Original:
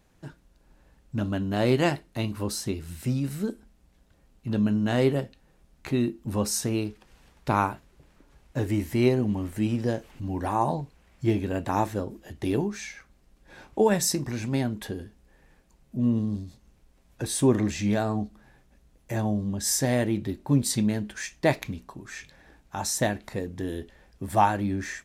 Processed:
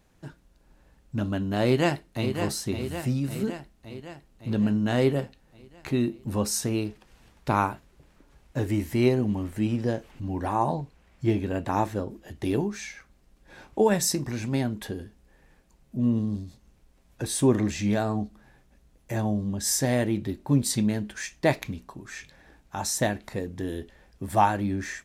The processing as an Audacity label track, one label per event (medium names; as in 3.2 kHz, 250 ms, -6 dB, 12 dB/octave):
1.660000	2.320000	echo throw 560 ms, feedback 65%, level -7.5 dB
9.430000	12.280000	treble shelf 6 kHz -4.5 dB